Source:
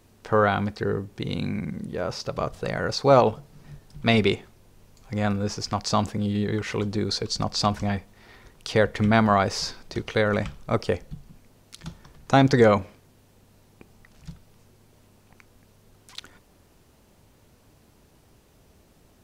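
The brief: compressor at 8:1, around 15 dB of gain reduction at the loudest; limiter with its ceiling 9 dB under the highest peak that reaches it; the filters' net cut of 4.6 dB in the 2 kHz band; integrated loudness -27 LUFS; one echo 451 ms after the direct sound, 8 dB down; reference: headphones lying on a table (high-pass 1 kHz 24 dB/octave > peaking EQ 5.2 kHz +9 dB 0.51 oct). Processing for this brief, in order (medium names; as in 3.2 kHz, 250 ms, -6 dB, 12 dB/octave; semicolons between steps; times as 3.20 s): peaking EQ 2 kHz -6.5 dB; compression 8:1, threshold -28 dBFS; peak limiter -24 dBFS; high-pass 1 kHz 24 dB/octave; peaking EQ 5.2 kHz +9 dB 0.51 oct; delay 451 ms -8 dB; trim +8.5 dB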